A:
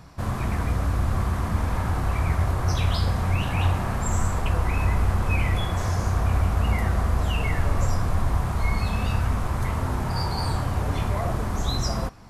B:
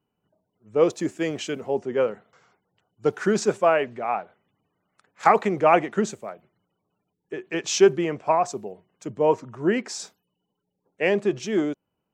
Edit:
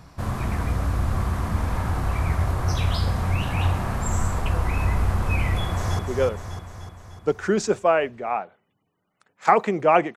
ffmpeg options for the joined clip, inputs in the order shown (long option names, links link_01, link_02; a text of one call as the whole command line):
ffmpeg -i cue0.wav -i cue1.wav -filter_complex "[0:a]apad=whole_dur=10.16,atrim=end=10.16,atrim=end=5.992[link_01];[1:a]atrim=start=1.768:end=5.94[link_02];[link_01][link_02]acrossfade=duration=0.004:curve1=hsin:curve2=hsin,asplit=2[link_03][link_04];[link_04]afade=type=in:start_time=5.6:duration=0.01,afade=type=out:start_time=5.99:duration=0.01,aecho=0:1:300|600|900|1200|1500|1800|2100|2400:0.562341|0.337405|0.202443|0.121466|0.0728794|0.0437277|0.0262366|0.015742[link_05];[link_03][link_05]amix=inputs=2:normalize=0" out.wav